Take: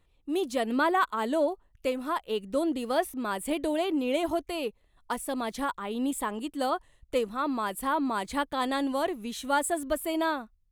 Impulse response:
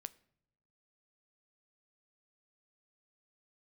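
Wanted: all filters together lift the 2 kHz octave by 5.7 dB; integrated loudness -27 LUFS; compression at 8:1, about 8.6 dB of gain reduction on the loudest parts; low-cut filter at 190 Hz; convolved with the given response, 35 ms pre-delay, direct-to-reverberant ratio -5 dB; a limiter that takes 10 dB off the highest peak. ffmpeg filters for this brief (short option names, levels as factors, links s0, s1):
-filter_complex "[0:a]highpass=190,equalizer=f=2000:t=o:g=8,acompressor=threshold=0.0447:ratio=8,alimiter=level_in=1.58:limit=0.0631:level=0:latency=1,volume=0.631,asplit=2[s0][s1];[1:a]atrim=start_sample=2205,adelay=35[s2];[s1][s2]afir=irnorm=-1:irlink=0,volume=2.99[s3];[s0][s3]amix=inputs=2:normalize=0,volume=1.5"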